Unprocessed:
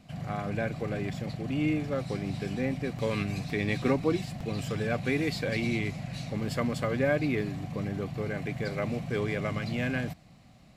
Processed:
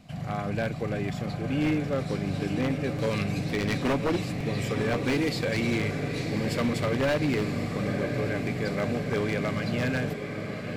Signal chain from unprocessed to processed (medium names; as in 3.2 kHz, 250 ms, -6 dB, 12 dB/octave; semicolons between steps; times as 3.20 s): echo that smears into a reverb 1006 ms, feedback 68%, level -8 dB; wavefolder -21.5 dBFS; trim +2.5 dB